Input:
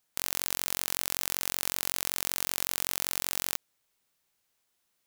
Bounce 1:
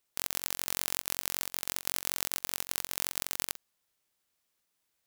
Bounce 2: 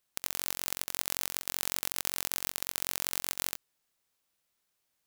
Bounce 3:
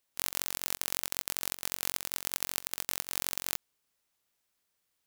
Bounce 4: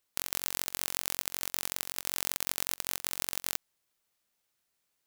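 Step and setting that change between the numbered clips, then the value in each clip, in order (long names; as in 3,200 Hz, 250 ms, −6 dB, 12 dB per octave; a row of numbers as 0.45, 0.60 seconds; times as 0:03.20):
ring modulator whose carrier an LFO sweeps, at: 6.2, 3.2, 1.5, 0.35 Hertz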